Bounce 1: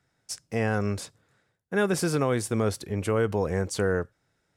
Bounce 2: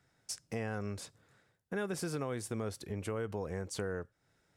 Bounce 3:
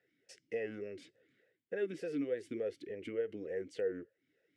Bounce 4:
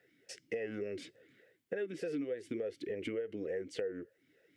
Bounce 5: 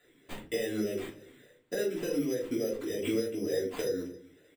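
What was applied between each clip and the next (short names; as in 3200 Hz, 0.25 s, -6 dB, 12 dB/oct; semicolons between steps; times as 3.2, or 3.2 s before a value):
compressor 2.5:1, threshold -40 dBFS, peak gain reduction 13 dB
vowel sweep e-i 3.4 Hz; gain +9 dB
compressor 6:1, threshold -43 dBFS, peak gain reduction 12.5 dB; gain +8 dB
careless resampling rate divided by 8×, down none, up hold; echo 0.271 s -22 dB; shoebox room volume 180 m³, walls furnished, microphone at 3 m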